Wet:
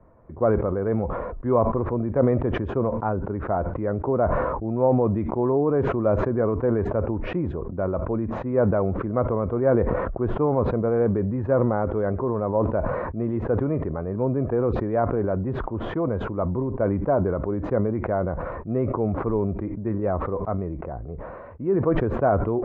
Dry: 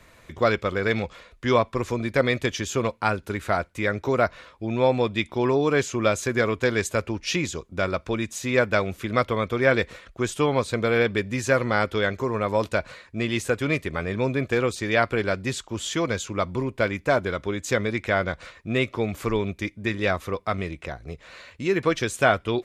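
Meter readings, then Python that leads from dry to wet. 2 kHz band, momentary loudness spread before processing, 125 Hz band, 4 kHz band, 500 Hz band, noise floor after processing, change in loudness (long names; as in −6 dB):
−13.0 dB, 8 LU, +3.5 dB, below −20 dB, +1.5 dB, −35 dBFS, +0.5 dB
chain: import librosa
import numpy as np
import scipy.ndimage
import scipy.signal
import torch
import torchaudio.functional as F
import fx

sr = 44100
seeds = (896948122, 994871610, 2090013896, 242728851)

y = scipy.signal.sosfilt(scipy.signal.butter(4, 1000.0, 'lowpass', fs=sr, output='sos'), x)
y = fx.sustainer(y, sr, db_per_s=27.0)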